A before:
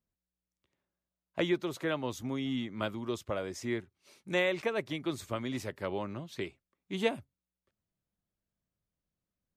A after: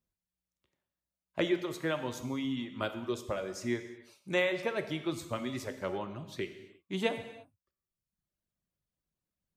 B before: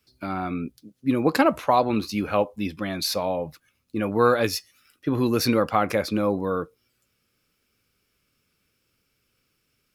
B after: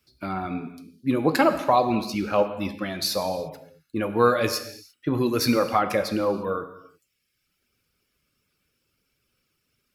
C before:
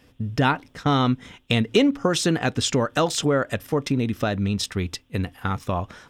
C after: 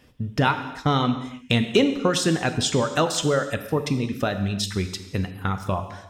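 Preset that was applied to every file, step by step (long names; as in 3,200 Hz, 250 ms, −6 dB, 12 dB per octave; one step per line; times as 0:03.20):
reverb reduction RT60 1 s
reverb whose tail is shaped and stops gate 370 ms falling, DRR 7.5 dB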